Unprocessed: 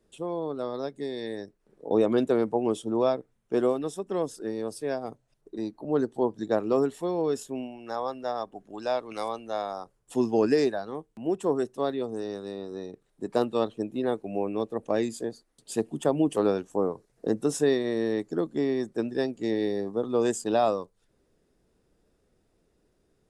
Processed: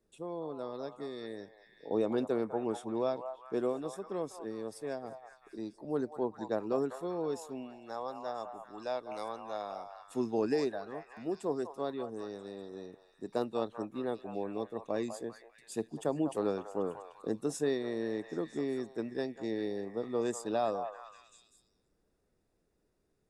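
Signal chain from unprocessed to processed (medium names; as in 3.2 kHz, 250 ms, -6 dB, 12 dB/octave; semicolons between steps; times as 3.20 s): band-stop 3.1 kHz, Q 10; on a send: repeats whose band climbs or falls 197 ms, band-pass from 890 Hz, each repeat 0.7 oct, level -5 dB; on the sum: trim -8 dB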